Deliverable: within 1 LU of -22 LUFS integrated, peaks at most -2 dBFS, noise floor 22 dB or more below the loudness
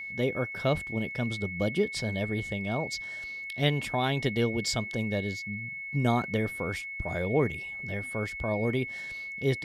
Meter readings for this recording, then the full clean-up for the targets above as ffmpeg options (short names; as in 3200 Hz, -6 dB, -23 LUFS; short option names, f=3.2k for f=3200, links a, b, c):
steady tone 2200 Hz; tone level -36 dBFS; loudness -30.5 LUFS; peak -12.0 dBFS; loudness target -22.0 LUFS
-> -af "bandreject=f=2.2k:w=30"
-af "volume=8.5dB"